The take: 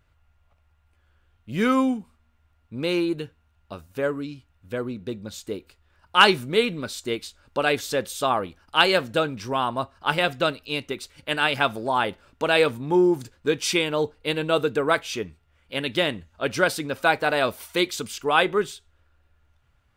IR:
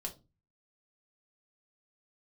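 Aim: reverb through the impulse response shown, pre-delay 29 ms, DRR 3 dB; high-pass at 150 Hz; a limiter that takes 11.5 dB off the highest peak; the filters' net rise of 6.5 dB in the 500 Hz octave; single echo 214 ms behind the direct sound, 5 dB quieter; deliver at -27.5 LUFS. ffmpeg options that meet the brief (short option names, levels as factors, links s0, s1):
-filter_complex "[0:a]highpass=150,equalizer=f=500:t=o:g=8,alimiter=limit=0.266:level=0:latency=1,aecho=1:1:214:0.562,asplit=2[s0][s1];[1:a]atrim=start_sample=2205,adelay=29[s2];[s1][s2]afir=irnorm=-1:irlink=0,volume=0.841[s3];[s0][s3]amix=inputs=2:normalize=0,volume=0.473"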